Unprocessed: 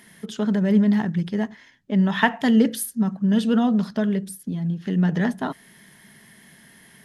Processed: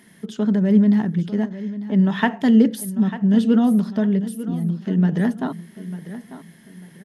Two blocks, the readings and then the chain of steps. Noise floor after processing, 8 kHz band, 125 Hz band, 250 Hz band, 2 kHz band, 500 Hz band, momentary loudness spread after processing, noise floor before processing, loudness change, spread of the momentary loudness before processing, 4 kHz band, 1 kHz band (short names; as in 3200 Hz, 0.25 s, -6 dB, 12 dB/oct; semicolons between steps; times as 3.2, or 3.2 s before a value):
-49 dBFS, -3.5 dB, +2.5 dB, +3.0 dB, -3.0 dB, +1.5 dB, 18 LU, -52 dBFS, +2.5 dB, 11 LU, -3.0 dB, -1.5 dB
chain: bell 260 Hz +7 dB 2.2 oct; on a send: feedback echo 0.896 s, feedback 31%, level -14 dB; on the sum: gain -3.5 dB